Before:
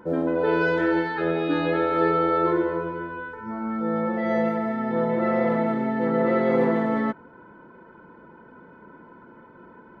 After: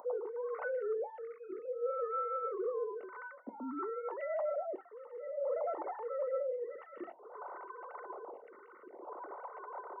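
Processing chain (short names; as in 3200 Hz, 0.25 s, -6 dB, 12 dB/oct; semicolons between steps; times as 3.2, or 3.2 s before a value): sine-wave speech; on a send at -13 dB: reverb RT60 0.20 s, pre-delay 3 ms; on the sum: upward compressor, threshold -35 dBFS; polynomial smoothing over 65 samples; reverse; compressor 6:1, threshold -35 dBFS, peak gain reduction 18.5 dB; reverse; HPF 300 Hz 12 dB/oct; photocell phaser 0.55 Hz; gain +2 dB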